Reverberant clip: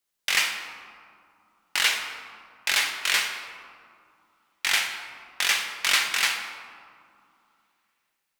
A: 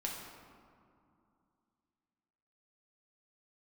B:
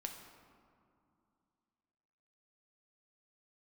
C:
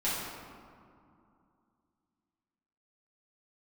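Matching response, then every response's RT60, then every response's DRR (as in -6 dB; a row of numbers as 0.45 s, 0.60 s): B; 2.5 s, 2.5 s, 2.5 s; -2.5 dB, 3.0 dB, -11.0 dB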